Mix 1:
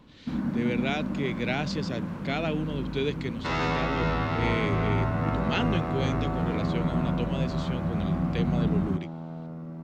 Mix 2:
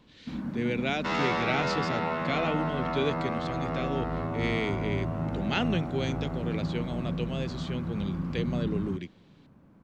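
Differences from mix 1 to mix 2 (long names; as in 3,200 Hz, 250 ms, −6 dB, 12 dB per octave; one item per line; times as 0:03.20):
first sound −5.5 dB
second sound: entry −2.40 s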